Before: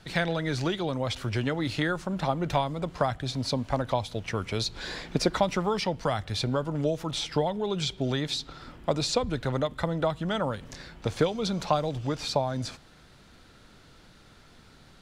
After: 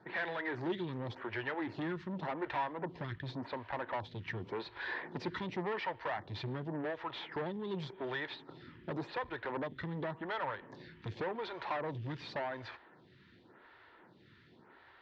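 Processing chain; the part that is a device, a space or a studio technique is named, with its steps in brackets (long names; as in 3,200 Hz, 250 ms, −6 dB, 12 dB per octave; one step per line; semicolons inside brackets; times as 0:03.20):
vibe pedal into a guitar amplifier (phaser with staggered stages 0.89 Hz; tube saturation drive 33 dB, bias 0.4; loudspeaker in its box 110–3,700 Hz, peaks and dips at 110 Hz +4 dB, 360 Hz +8 dB, 950 Hz +9 dB, 1,800 Hz +10 dB)
level −3.5 dB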